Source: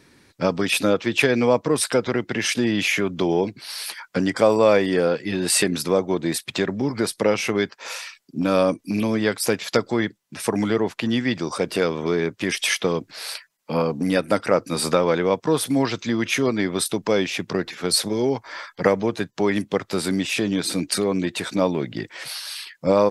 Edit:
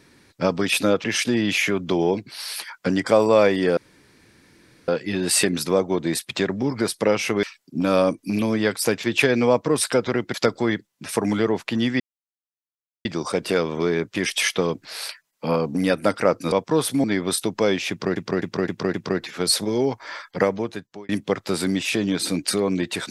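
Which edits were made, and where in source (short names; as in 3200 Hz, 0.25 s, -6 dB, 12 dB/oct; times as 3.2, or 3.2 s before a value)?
1.04–2.34 move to 9.65
5.07 insert room tone 1.11 s
7.62–8.04 cut
11.31 insert silence 1.05 s
14.78–15.28 cut
15.8–16.52 cut
17.38–17.64 loop, 5 plays
18.47–19.53 fade out equal-power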